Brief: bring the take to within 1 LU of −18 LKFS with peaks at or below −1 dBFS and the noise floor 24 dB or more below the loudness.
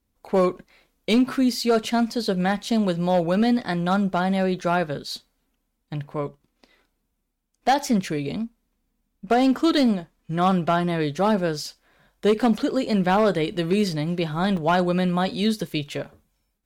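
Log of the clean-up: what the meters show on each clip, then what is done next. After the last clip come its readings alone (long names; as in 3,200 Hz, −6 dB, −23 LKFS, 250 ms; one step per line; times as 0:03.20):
share of clipped samples 0.8%; peaks flattened at −13.0 dBFS; number of dropouts 2; longest dropout 2.3 ms; integrated loudness −23.0 LKFS; sample peak −13.0 dBFS; target loudness −18.0 LKFS
→ clipped peaks rebuilt −13 dBFS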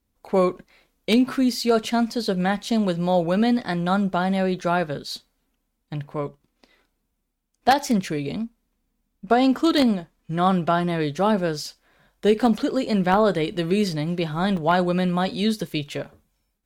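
share of clipped samples 0.0%; number of dropouts 2; longest dropout 2.3 ms
→ repair the gap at 0:04.59/0:14.57, 2.3 ms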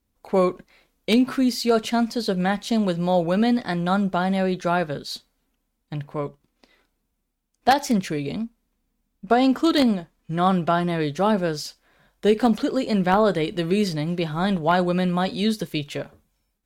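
number of dropouts 0; integrated loudness −22.5 LKFS; sample peak −4.0 dBFS; target loudness −18.0 LKFS
→ level +4.5 dB
brickwall limiter −1 dBFS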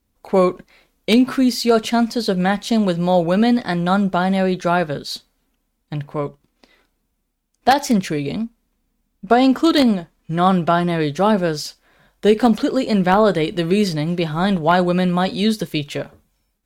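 integrated loudness −18.0 LKFS; sample peak −1.0 dBFS; background noise floor −70 dBFS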